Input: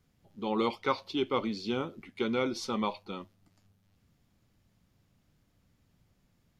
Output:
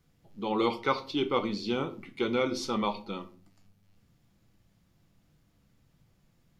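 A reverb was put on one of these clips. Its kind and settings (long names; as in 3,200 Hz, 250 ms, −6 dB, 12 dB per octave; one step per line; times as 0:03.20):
rectangular room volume 280 cubic metres, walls furnished, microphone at 0.71 metres
level +1.5 dB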